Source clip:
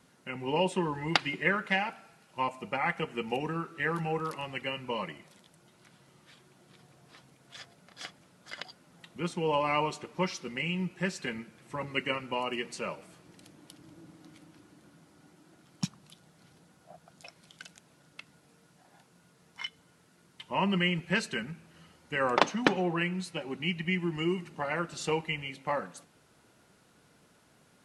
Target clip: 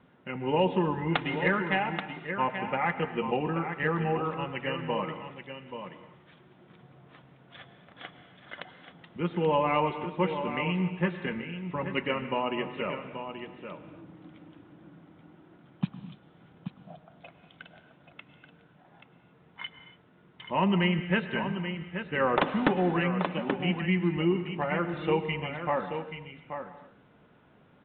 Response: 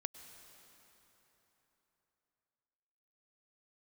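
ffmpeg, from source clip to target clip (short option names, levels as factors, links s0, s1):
-filter_complex "[0:a]aecho=1:1:831:0.355,aresample=8000,aeval=exprs='0.596*sin(PI/2*2.24*val(0)/0.596)':c=same,aresample=44100,highshelf=f=2200:g=-9[s0];[1:a]atrim=start_sample=2205,afade=t=out:st=0.35:d=0.01,atrim=end_sample=15876[s1];[s0][s1]afir=irnorm=-1:irlink=0,volume=0.631"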